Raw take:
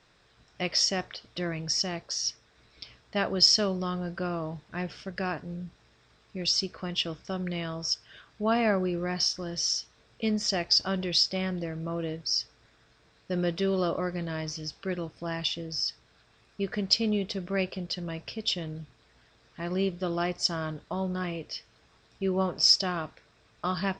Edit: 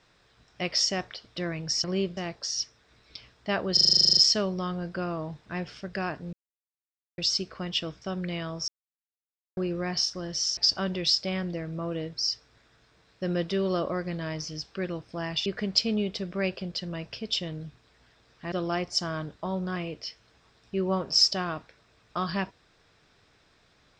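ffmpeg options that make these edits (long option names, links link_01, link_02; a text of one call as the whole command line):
ffmpeg -i in.wav -filter_complex "[0:a]asplit=21[link_01][link_02][link_03][link_04][link_05][link_06][link_07][link_08][link_09][link_10][link_11][link_12][link_13][link_14][link_15][link_16][link_17][link_18][link_19][link_20][link_21];[link_01]atrim=end=1.842[link_22];[link_02]atrim=start=19.668:end=20.002[link_23];[link_03]atrim=start=1.838:end=3.442[link_24];[link_04]atrim=start=3.398:end=3.442[link_25];[link_05]atrim=start=3.398:end=3.442[link_26];[link_06]atrim=start=3.398:end=3.442[link_27];[link_07]atrim=start=3.398:end=3.442[link_28];[link_08]atrim=start=3.398:end=3.442[link_29];[link_09]atrim=start=3.398:end=3.442[link_30];[link_10]atrim=start=3.398:end=3.442[link_31];[link_11]atrim=start=3.398:end=3.442[link_32];[link_12]atrim=start=3.398:end=3.442[link_33];[link_13]atrim=start=3.398:end=3.442[link_34];[link_14]atrim=start=3.398:end=5.56,asetpts=PTS-STARTPTS,afade=type=out:start_time=2.158:duration=0.004:curve=hsin[link_35];[link_15]atrim=start=5.56:end=6.41,asetpts=PTS-STARTPTS,volume=0[link_36];[link_16]atrim=start=6.41:end=7.91,asetpts=PTS-STARTPTS,afade=type=in:duration=0.004:curve=hsin,afade=type=out:start_time=1.496:duration=0.004:curve=hsin[link_37];[link_17]atrim=start=7.91:end=8.8,asetpts=PTS-STARTPTS,volume=0[link_38];[link_18]atrim=start=8.8:end=9.802,asetpts=PTS-STARTPTS,afade=type=in:duration=0.004:curve=hsin[link_39];[link_19]atrim=start=10.648:end=15.542[link_40];[link_20]atrim=start=16.608:end=19.672[link_41];[link_21]atrim=start=19.998[link_42];[link_22][link_23]acrossfade=duration=0.004:curve1=hsin:curve2=hsin[link_43];[link_43][link_24]acrossfade=duration=0.004:curve1=hsin:curve2=hsin[link_44];[link_44][link_25]acrossfade=duration=0.004:curve1=hsin:curve2=hsin[link_45];[link_45][link_26]acrossfade=duration=0.004:curve1=hsin:curve2=hsin[link_46];[link_46][link_27]acrossfade=duration=0.004:curve1=hsin:curve2=hsin[link_47];[link_47][link_28]acrossfade=duration=0.004:curve1=hsin:curve2=hsin[link_48];[link_48][link_29]acrossfade=duration=0.004:curve1=hsin:curve2=hsin[link_49];[link_49][link_30]acrossfade=duration=0.004:curve1=hsin:curve2=hsin[link_50];[link_50][link_31]acrossfade=duration=0.004:curve1=hsin:curve2=hsin[link_51];[link_51][link_32]acrossfade=duration=0.004:curve1=hsin:curve2=hsin[link_52];[link_52][link_33]acrossfade=duration=0.004:curve1=hsin:curve2=hsin[link_53];[link_53][link_34]acrossfade=duration=0.004:curve1=hsin:curve2=hsin[link_54];[link_35][link_36][link_37][link_38][link_39]concat=n=5:v=0:a=1[link_55];[link_54][link_55]acrossfade=duration=0.004:curve1=hsin:curve2=hsin[link_56];[link_56][link_40]acrossfade=duration=0.004:curve1=hsin:curve2=hsin[link_57];[link_57][link_41]acrossfade=duration=0.004:curve1=hsin:curve2=hsin[link_58];[link_58][link_42]acrossfade=duration=0.004:curve1=hsin:curve2=hsin" out.wav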